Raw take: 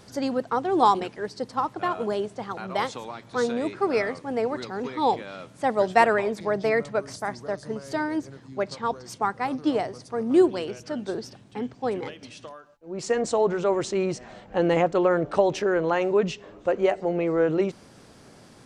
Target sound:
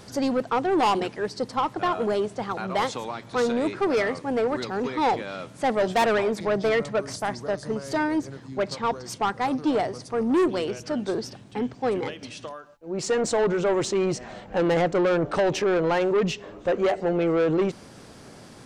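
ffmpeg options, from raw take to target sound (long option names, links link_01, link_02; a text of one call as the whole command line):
ffmpeg -i in.wav -af "asoftclip=type=tanh:threshold=-22dB,volume=4.5dB" out.wav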